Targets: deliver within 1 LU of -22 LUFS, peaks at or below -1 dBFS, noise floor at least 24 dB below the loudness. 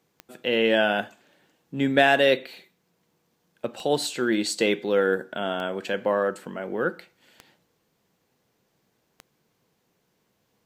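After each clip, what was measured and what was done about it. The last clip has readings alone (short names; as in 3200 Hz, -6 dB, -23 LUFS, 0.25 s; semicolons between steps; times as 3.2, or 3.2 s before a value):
clicks 6; loudness -24.0 LUFS; peak -4.5 dBFS; loudness target -22.0 LUFS
-> de-click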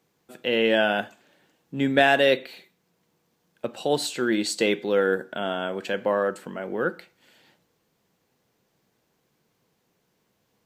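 clicks 0; loudness -24.0 LUFS; peak -4.5 dBFS; loudness target -22.0 LUFS
-> gain +2 dB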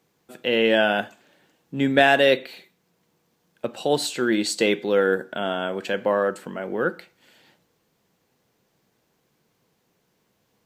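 loudness -22.5 LUFS; peak -2.5 dBFS; noise floor -70 dBFS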